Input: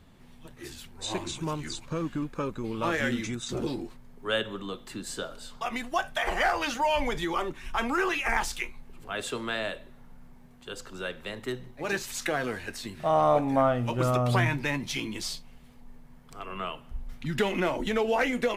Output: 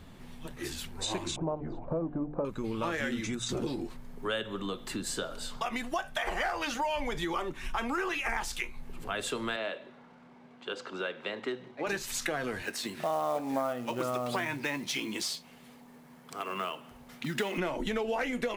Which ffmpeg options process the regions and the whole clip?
-filter_complex "[0:a]asettb=1/sr,asplit=3[a][b][c];[a]atrim=end=1.364[d];[b]atrim=start=1.36:end=2.45,asetpts=PTS-STARTPTS,afade=t=in:d=0.004:c=qsin,afade=t=out:st=1.086:d=0.004:c=qsin,lowpass=f=690:t=q:w=3.8,bandreject=f=50:t=h:w=6,bandreject=f=100:t=h:w=6,bandreject=f=150:t=h:w=6,bandreject=f=200:t=h:w=6,bandreject=f=250:t=h:w=6,bandreject=f=300:t=h:w=6,bandreject=f=350:t=h:w=6,bandreject=f=400:t=h:w=6,bandreject=f=450:t=h:w=6[e];[c]atrim=start=2.446[f];[d][e]acrossfade=d=0.004:c1=hsin:c2=qsin[g];[g][f]acrossfade=d=0.004:c1=qsin:c2=hsin,asettb=1/sr,asplit=3[h][i][j];[h]atrim=end=9.564[k];[i]atrim=start=9.56:end=11.87,asetpts=PTS-STARTPTS,afade=t=in:d=0.004:c=qsin,afade=t=out:st=2.306:d=0.004:c=qsin,bandreject=f=1.8k:w=20,acrusher=bits=7:mode=log:mix=0:aa=0.000001,highpass=270,lowpass=3.6k[l];[j]atrim=start=11.866[m];[k][l]acrossfade=d=0.004:c1=hsin:c2=qsin[n];[n][m]acrossfade=d=0.004:c1=qsin:c2=hsin,asettb=1/sr,asplit=3[o][p][q];[o]atrim=end=12.624[r];[p]atrim=start=12.62:end=17.58,asetpts=PTS-STARTPTS,afade=t=in:d=0.004:c=qsin,afade=t=out:st=4.956:d=0.004:c=qsin,highpass=220,acrusher=bits=5:mode=log:mix=0:aa=0.000001[s];[q]atrim=start=17.576[t];[r][s]acrossfade=d=0.004:c1=hsin:c2=qsin[u];[u][t]acrossfade=d=0.004:c1=qsin:c2=hsin,bandreject=f=60:t=h:w=6,bandreject=f=120:t=h:w=6,acompressor=threshold=-38dB:ratio=3,volume=5.5dB"

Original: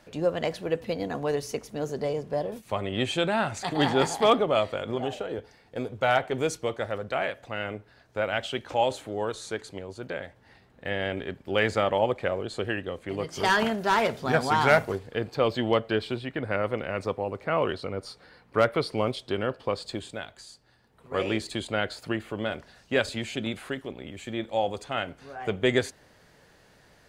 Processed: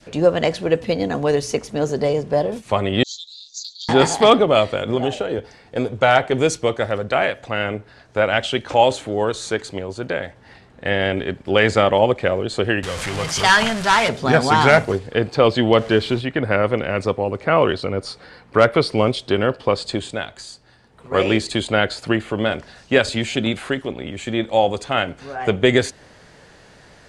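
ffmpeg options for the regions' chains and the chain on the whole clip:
-filter_complex "[0:a]asettb=1/sr,asplit=3[a][b][c];[a]atrim=end=3.034[d];[b]atrim=start=3.03:end=3.89,asetpts=PTS-STARTPTS,afade=t=in:d=0.004:c=qsin,afade=t=out:st=0.856:d=0.004:c=qsin,asuperpass=centerf=5200:order=12:qfactor=1.6,asoftclip=type=hard:threshold=-32.5dB[e];[c]atrim=start=3.886[f];[d][e]acrossfade=d=0.004:c1=hsin:c2=qsin[g];[g][f]acrossfade=d=0.004:c1=qsin:c2=hsin,asettb=1/sr,asplit=3[h][i][j];[h]atrim=end=12.834[k];[i]atrim=start=12.83:end=14.09,asetpts=PTS-STARTPTS,afade=t=in:d=0.004:c=qsin,afade=t=out:st=1.256:d=0.004:c=qsin,aeval=exprs='val(0)+0.5*0.0335*sgn(val(0))':c=same,equalizer=f=340:t=o:w=1.6:g=-13[l];[j]atrim=start=14.086[m];[k][l]acrossfade=d=0.004:c1=hsin:c2=qsin[n];[n][m]acrossfade=d=0.004:c1=qsin:c2=hsin,asettb=1/sr,asplit=3[o][p][q];[o]atrim=end=15.784[r];[p]atrim=start=15.78:end=16.21,asetpts=PTS-STARTPTS,afade=t=in:d=0.004:c=qsin,afade=t=out:st=0.426:d=0.004:c=qsin,aeval=exprs='val(0)+0.5*0.0106*sgn(val(0))':c=same,highshelf=f=7.4k:g=-9,bandreject=f=2.5k:w=26[s];[q]atrim=start=16.206[t];[r][s]acrossfade=d=0.004:c1=hsin:c2=qsin[u];[u][t]acrossfade=d=0.004:c1=qsin:c2=hsin,lowpass=f=9.7k:w=0.5412,lowpass=f=9.7k:w=1.3066,adynamicequalizer=threshold=0.0141:dfrequency=1000:dqfactor=0.72:tfrequency=1000:tqfactor=0.72:attack=5:release=100:ratio=0.375:range=2:mode=cutabove:tftype=bell,alimiter=level_in=11.5dB:limit=-1dB:release=50:level=0:latency=1,volume=-1dB"

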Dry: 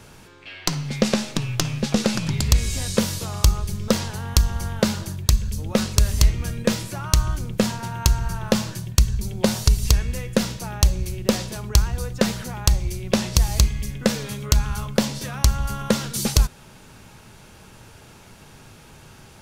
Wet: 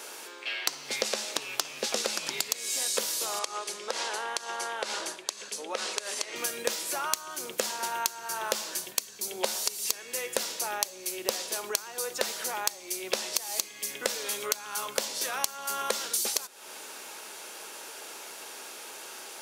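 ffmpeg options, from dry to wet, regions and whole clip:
-filter_complex "[0:a]asettb=1/sr,asplit=3[a][b][c];[a]atrim=end=3.394[d];[b]atrim=start=3.39:end=6.36,asetpts=PTS-STARTPTS,afade=t=in:d=0.004:c=qsin,afade=t=out:st=2.966:d=0.004:c=qsin,lowpass=f=9.9k:w=0.5412,lowpass=f=9.9k:w=1.3066,bass=f=250:g=-11,treble=f=4k:g=-7,acompressor=threshold=-30dB:ratio=4:attack=3.2:release=140:knee=1:detection=peak[e];[c]atrim=start=6.356[f];[d][e]acrossfade=d=0.004:c1=hsin:c2=qsin[g];[g][f]acrossfade=d=0.004:c1=qsin:c2=hsin,highpass=f=370:w=0.5412,highpass=f=370:w=1.3066,highshelf=f=4.5k:g=8,acompressor=threshold=-31dB:ratio=6,volume=4dB"

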